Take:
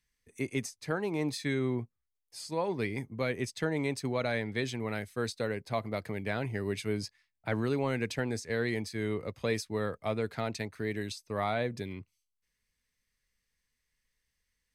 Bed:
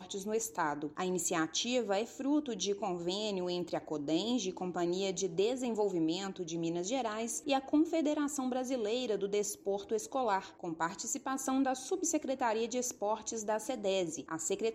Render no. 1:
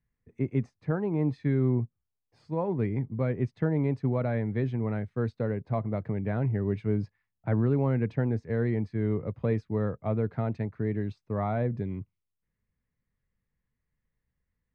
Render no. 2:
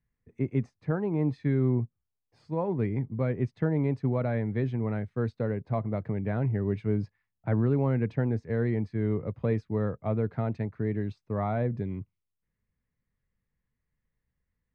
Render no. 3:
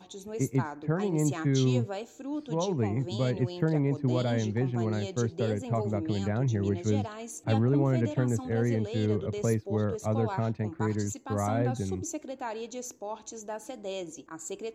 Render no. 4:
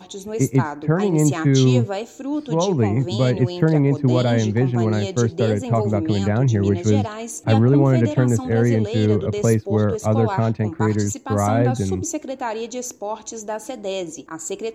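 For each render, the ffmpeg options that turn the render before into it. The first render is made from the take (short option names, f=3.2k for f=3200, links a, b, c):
-af "lowpass=1.3k,equalizer=f=130:w=0.69:g=10"
-af anull
-filter_complex "[1:a]volume=-3.5dB[a];[0:a][a]amix=inputs=2:normalize=0"
-af "volume=10dB"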